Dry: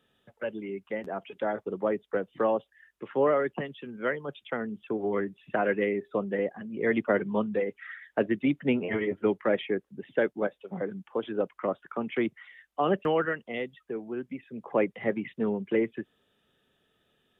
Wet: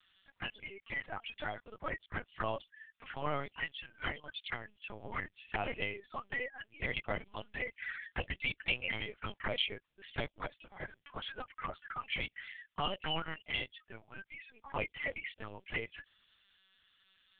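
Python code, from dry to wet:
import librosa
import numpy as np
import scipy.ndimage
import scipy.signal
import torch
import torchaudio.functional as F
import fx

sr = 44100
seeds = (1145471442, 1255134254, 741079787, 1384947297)

y = scipy.signal.sosfilt(scipy.signal.butter(2, 1300.0, 'highpass', fs=sr, output='sos'), x)
y = fx.high_shelf(y, sr, hz=2400.0, db=8.0)
y = fx.env_flanger(y, sr, rest_ms=5.6, full_db=-33.0)
y = fx.lpc_vocoder(y, sr, seeds[0], excitation='pitch_kept', order=8)
y = y * librosa.db_to_amplitude(3.5)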